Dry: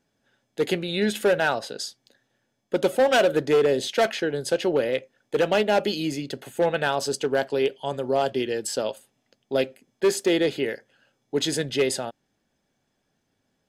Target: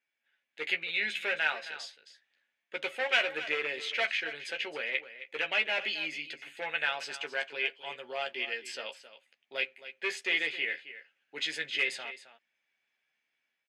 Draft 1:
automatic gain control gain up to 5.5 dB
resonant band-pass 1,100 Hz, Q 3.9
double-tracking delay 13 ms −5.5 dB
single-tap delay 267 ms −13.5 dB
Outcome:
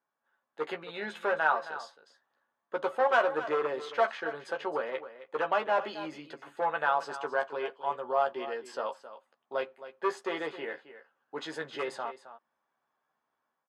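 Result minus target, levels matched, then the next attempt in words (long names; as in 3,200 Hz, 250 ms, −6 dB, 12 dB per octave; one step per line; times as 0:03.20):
1,000 Hz band +11.0 dB
automatic gain control gain up to 5.5 dB
resonant band-pass 2,300 Hz, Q 3.9
double-tracking delay 13 ms −5.5 dB
single-tap delay 267 ms −13.5 dB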